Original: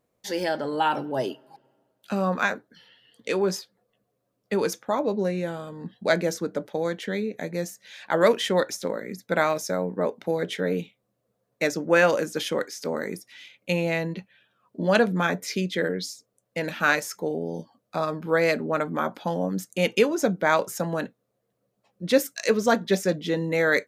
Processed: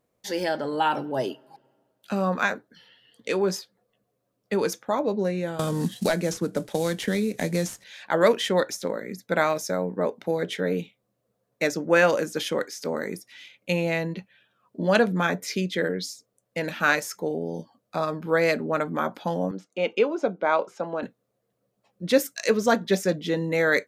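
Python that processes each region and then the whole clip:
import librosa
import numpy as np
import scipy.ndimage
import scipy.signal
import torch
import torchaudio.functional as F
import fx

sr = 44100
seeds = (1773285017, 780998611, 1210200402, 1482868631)

y = fx.chain(x, sr, fx.cvsd(bps=64000),
    fx.bass_treble(bass_db=6, treble_db=5),
    fx.band_squash(depth_pct=100), at=(5.59, 7.84))
y = fx.chain(y, sr, fx.bandpass_edges(low_hz=320.0, high_hz=2600.0),
    fx.peak_eq(hz=1800.0, db=-13.0, octaves=0.26), at=(19.51, 21.03))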